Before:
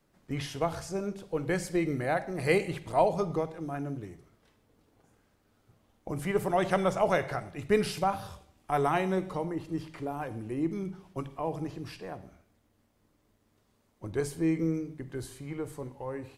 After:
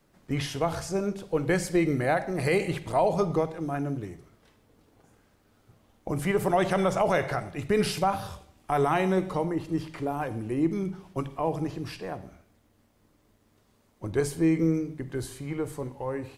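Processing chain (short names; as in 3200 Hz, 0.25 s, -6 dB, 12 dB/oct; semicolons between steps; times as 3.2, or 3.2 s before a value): limiter -19.5 dBFS, peak gain reduction 7 dB; gain +5 dB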